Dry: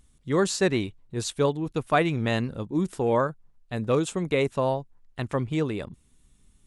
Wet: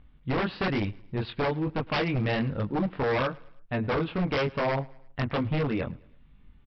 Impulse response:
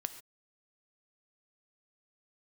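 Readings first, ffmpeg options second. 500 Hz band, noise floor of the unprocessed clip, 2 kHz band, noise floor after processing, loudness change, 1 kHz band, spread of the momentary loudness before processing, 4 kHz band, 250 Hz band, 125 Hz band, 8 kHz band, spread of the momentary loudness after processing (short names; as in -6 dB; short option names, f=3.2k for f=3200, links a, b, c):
-4.0 dB, -62 dBFS, +0.5 dB, -56 dBFS, -2.5 dB, -2.0 dB, 9 LU, -1.5 dB, -2.0 dB, 0.0 dB, under -25 dB, 7 LU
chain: -af "lowpass=f=2.8k:w=0.5412,lowpass=f=2.8k:w=1.3066,equalizer=f=380:w=4.9:g=-7,acompressor=threshold=-26dB:ratio=2.5,flanger=delay=19.5:depth=4.2:speed=1.1,aresample=11025,aeval=exprs='0.0355*(abs(mod(val(0)/0.0355+3,4)-2)-1)':c=same,aresample=44100,aecho=1:1:108|216|324:0.0631|0.0284|0.0128,volume=8dB"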